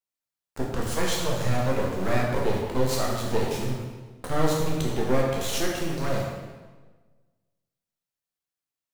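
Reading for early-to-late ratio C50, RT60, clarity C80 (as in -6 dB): 1.0 dB, 1.3 s, 3.0 dB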